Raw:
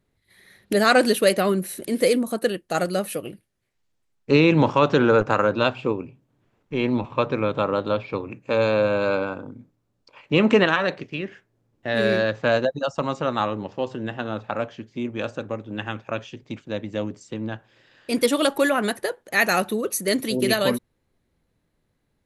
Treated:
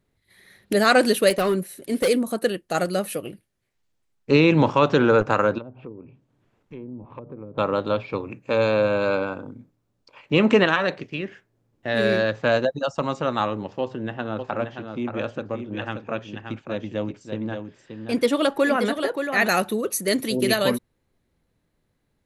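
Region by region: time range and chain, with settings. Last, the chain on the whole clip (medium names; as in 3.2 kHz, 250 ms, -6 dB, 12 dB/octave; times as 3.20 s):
1.30–2.08 s: gate -30 dBFS, range -7 dB + comb 7.3 ms, depth 30% + hard clipper -16 dBFS
5.58–7.58 s: low-pass that closes with the level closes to 340 Hz, closed at -18 dBFS + compression 2:1, threshold -44 dBFS
13.81–19.49 s: low-pass 3.2 kHz 6 dB/octave + delay 578 ms -7 dB
whole clip: none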